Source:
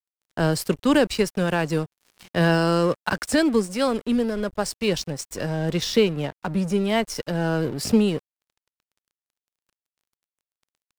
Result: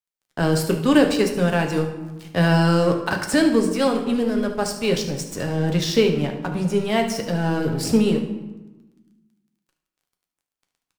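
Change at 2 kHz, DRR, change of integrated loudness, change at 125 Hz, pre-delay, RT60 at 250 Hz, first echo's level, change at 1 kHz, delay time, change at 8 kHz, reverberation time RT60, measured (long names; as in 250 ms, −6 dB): +1.5 dB, 3.0 dB, +2.5 dB, +3.5 dB, 7 ms, 1.6 s, −13.5 dB, +2.0 dB, 74 ms, +1.5 dB, 1.1 s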